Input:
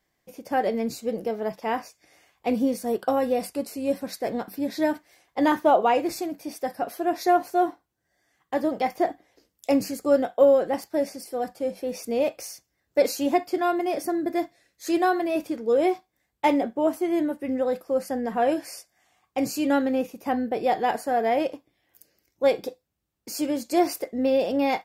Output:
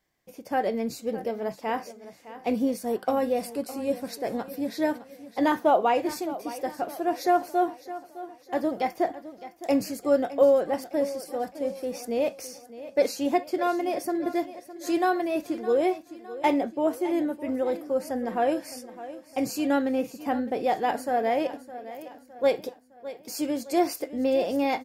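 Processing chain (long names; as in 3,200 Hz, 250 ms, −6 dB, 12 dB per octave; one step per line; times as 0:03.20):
0:12.47–0:13.25: high-shelf EQ 11,000 Hz −9.5 dB
repeating echo 611 ms, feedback 46%, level −15 dB
level −2 dB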